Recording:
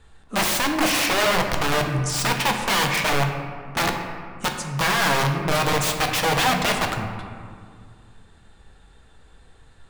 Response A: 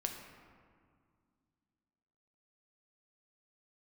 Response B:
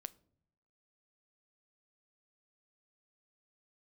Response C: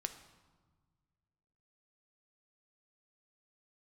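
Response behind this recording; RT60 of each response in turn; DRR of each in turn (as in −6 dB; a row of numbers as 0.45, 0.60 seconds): A; 2.0 s, non-exponential decay, 1.4 s; 2.5, 15.0, 7.5 decibels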